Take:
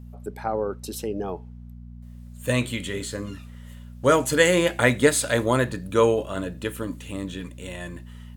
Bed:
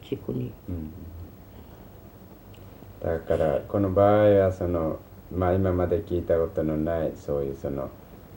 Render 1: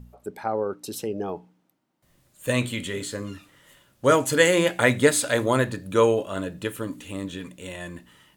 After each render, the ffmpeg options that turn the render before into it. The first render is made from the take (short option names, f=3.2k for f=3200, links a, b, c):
-af "bandreject=f=60:t=h:w=4,bandreject=f=120:t=h:w=4,bandreject=f=180:t=h:w=4,bandreject=f=240:t=h:w=4,bandreject=f=300:t=h:w=4"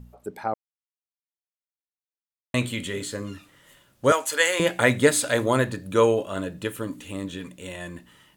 -filter_complex "[0:a]asettb=1/sr,asplit=3[a][b][c];[a]atrim=end=4.124[d];[b]atrim=start=4.12:end=4.6,asetpts=PTS-STARTPTS,afade=t=in:d=0.004:c=qsin,afade=t=out:st=0.476:d=0.004:c=qsin,highpass=730[e];[c]atrim=start=4.596[f];[d][e]acrossfade=d=0.004:c1=hsin:c2=qsin[g];[g][f]acrossfade=d=0.004:c1=qsin:c2=hsin,asplit=3[h][i][j];[h]atrim=end=0.54,asetpts=PTS-STARTPTS,afade=t=out:st=0.536:d=0.004:c=hsin[k];[i]atrim=start=0.54:end=2.54,asetpts=PTS-STARTPTS,volume=0[l];[j]atrim=start=2.54,asetpts=PTS-STARTPTS,afade=t=in:d=0.004:c=hsin[m];[k][l][m]concat=n=3:v=0:a=1"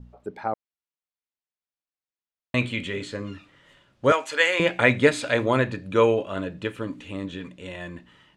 -af "adynamicequalizer=threshold=0.00631:dfrequency=2400:dqfactor=5:tfrequency=2400:tqfactor=5:attack=5:release=100:ratio=0.375:range=3.5:mode=boostabove:tftype=bell,lowpass=4.2k"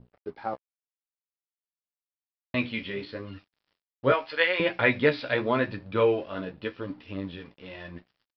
-af "flanger=delay=8.7:depth=6.9:regen=23:speed=0.85:shape=triangular,aresample=11025,aeval=exprs='sgn(val(0))*max(abs(val(0))-0.00211,0)':c=same,aresample=44100"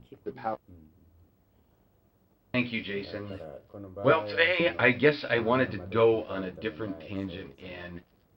-filter_complex "[1:a]volume=-19.5dB[a];[0:a][a]amix=inputs=2:normalize=0"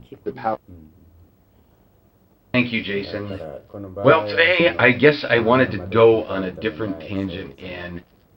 -af "volume=9.5dB,alimiter=limit=-1dB:level=0:latency=1"